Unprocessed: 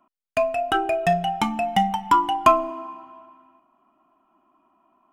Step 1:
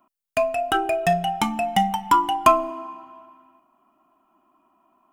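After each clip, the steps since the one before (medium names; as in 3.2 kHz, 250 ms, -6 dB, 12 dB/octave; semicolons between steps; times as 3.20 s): treble shelf 7.7 kHz +10 dB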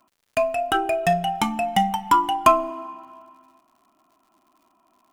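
crackle 120 per s -51 dBFS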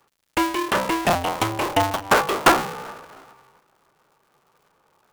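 cycle switcher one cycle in 2, inverted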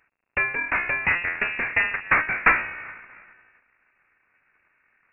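frequency inversion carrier 2.7 kHz; trim -2.5 dB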